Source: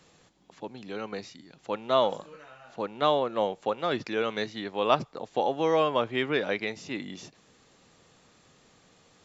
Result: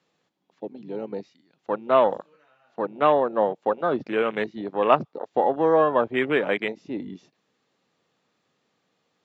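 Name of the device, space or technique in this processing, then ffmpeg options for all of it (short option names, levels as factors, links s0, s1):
over-cleaned archive recording: -af "highpass=160,lowpass=5000,afwtdn=0.0224,volume=1.88"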